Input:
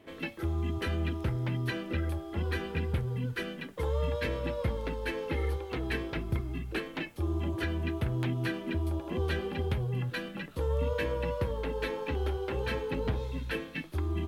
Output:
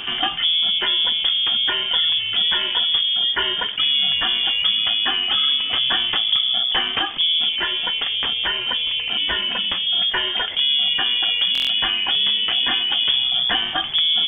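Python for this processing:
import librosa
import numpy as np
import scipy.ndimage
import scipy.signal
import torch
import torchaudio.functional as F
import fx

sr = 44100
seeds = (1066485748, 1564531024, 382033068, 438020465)

y = fx.rider(x, sr, range_db=10, speed_s=0.5)
y = fx.highpass(y, sr, hz=290.0, slope=6, at=(7.49, 9.87))
y = fx.freq_invert(y, sr, carrier_hz=3400)
y = fx.buffer_glitch(y, sr, at_s=(11.53,), block=1024, repeats=6)
y = fx.env_flatten(y, sr, amount_pct=50)
y = F.gain(torch.from_numpy(y), 8.0).numpy()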